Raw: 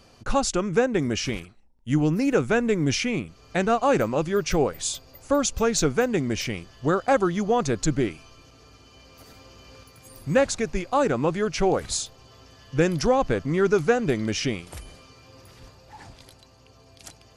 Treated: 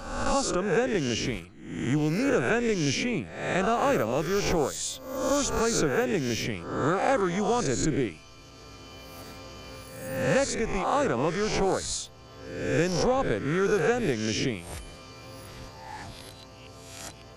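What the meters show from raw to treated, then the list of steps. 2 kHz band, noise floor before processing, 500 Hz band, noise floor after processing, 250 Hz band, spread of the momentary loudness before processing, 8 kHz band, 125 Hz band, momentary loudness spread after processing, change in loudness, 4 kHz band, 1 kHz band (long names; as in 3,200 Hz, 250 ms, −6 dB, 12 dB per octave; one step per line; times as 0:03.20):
−0.5 dB, −54 dBFS, −3.0 dB, −48 dBFS, −3.5 dB, 8 LU, −2.0 dB, −3.0 dB, 19 LU, −3.0 dB, −1.5 dB, −2.0 dB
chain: peak hold with a rise ahead of every peak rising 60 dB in 0.72 s
multiband upward and downward compressor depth 40%
level −5 dB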